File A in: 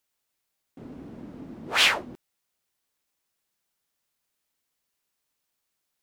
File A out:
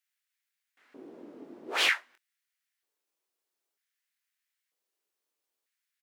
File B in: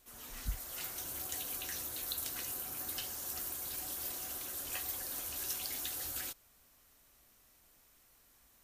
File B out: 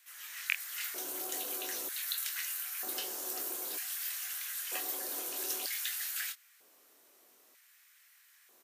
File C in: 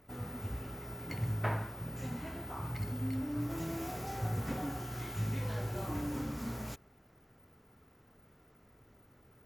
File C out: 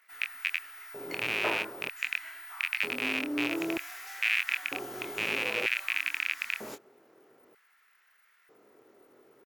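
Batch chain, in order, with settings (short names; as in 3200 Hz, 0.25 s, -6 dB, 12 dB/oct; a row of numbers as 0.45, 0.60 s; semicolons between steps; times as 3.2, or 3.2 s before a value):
rattling part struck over -35 dBFS, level -18 dBFS; doubler 24 ms -7.5 dB; LFO high-pass square 0.53 Hz 380–1800 Hz; normalise peaks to -12 dBFS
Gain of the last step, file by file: -7.5, +1.5, +1.0 dB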